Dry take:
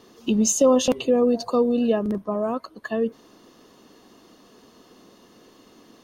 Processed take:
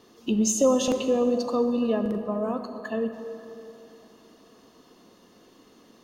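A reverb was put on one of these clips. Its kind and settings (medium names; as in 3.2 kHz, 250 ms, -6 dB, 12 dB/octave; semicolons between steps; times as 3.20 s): plate-style reverb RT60 3.2 s, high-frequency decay 0.5×, DRR 7 dB; trim -4 dB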